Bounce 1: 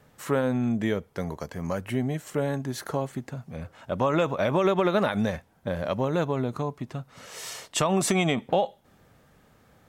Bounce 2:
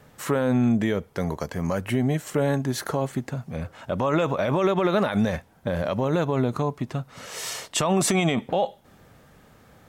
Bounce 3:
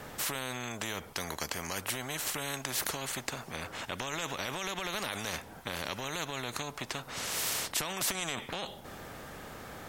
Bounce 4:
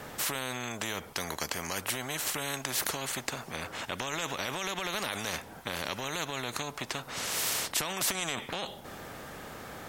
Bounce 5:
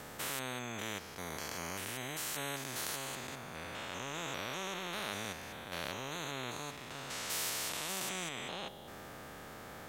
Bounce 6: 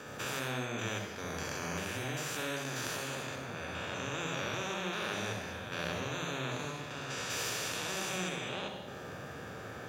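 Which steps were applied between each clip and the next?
peak limiter -19 dBFS, peak gain reduction 7.5 dB; trim +5.5 dB
spectrum-flattening compressor 4:1
bass shelf 80 Hz -5 dB; trim +2 dB
spectrogram pixelated in time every 200 ms; trim -3.5 dB
reverberation RT60 0.85 s, pre-delay 58 ms, DRR 3.5 dB; trim -4.5 dB

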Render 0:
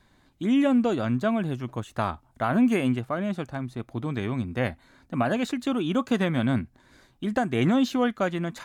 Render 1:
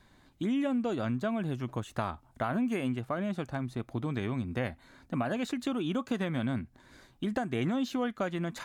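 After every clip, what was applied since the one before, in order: compression 3:1, threshold -30 dBFS, peak gain reduction 10 dB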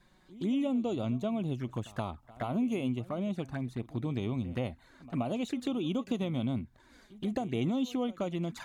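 touch-sensitive flanger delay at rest 6.1 ms, full sweep at -29 dBFS; pre-echo 124 ms -19.5 dB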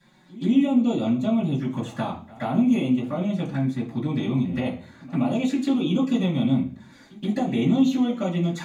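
reverberation RT60 0.45 s, pre-delay 3 ms, DRR -9.5 dB

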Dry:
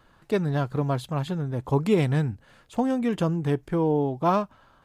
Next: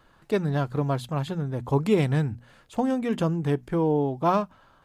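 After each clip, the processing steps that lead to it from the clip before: hum notches 60/120/180/240 Hz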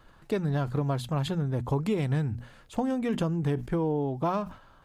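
compression 5:1, threshold -25 dBFS, peak gain reduction 9 dB; bass shelf 80 Hz +7.5 dB; decay stretcher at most 130 dB/s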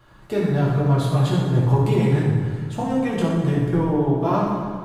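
reverberation RT60 1.8 s, pre-delay 4 ms, DRR -7 dB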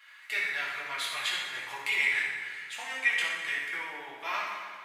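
resonant high-pass 2.1 kHz, resonance Q 5.6

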